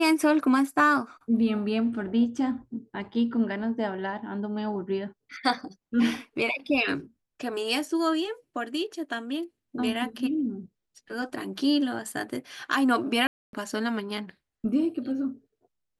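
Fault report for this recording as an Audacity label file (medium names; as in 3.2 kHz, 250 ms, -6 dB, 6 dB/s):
13.270000	13.530000	dropout 262 ms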